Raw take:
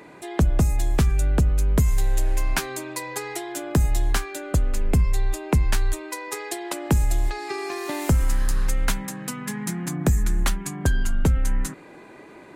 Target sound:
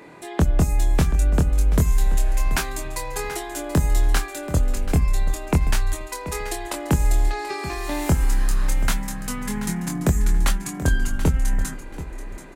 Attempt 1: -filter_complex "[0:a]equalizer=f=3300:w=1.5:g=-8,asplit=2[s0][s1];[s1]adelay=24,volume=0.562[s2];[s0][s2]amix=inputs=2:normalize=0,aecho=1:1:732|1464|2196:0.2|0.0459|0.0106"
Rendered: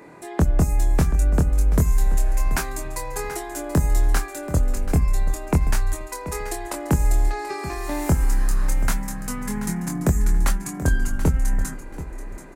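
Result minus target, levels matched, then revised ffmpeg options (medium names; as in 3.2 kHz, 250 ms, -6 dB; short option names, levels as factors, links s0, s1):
4 kHz band -5.0 dB
-filter_complex "[0:a]asplit=2[s0][s1];[s1]adelay=24,volume=0.562[s2];[s0][s2]amix=inputs=2:normalize=0,aecho=1:1:732|1464|2196:0.2|0.0459|0.0106"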